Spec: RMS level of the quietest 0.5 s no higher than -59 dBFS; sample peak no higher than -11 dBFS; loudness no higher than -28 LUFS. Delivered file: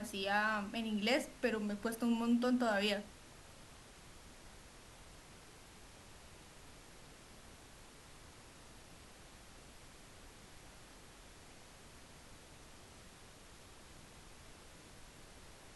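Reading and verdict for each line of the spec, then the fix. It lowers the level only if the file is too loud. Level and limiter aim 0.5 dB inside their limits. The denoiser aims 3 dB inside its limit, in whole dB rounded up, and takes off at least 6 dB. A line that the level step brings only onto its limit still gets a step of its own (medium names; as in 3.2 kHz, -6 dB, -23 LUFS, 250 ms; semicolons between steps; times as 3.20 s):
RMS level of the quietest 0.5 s -57 dBFS: fail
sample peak -19.5 dBFS: pass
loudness -35.5 LUFS: pass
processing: noise reduction 6 dB, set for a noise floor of -57 dBFS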